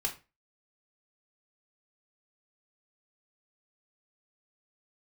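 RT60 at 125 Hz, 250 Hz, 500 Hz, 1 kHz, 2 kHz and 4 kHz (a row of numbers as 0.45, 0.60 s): 0.40, 0.30, 0.30, 0.25, 0.30, 0.25 s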